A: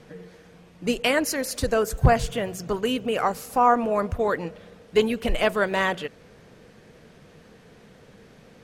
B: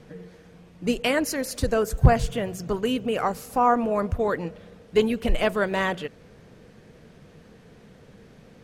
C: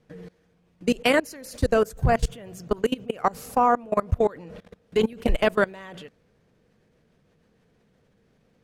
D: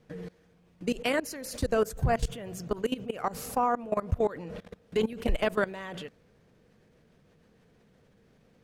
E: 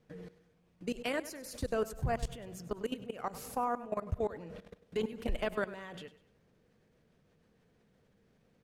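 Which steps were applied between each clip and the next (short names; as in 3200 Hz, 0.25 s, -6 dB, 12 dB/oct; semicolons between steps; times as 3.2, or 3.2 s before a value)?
low shelf 340 Hz +5.5 dB; gain -2.5 dB
level quantiser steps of 23 dB; gain +5 dB
limiter -19 dBFS, peak gain reduction 10.5 dB; gain +1.5 dB
feedback echo 99 ms, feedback 36%, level -16 dB; gain -7 dB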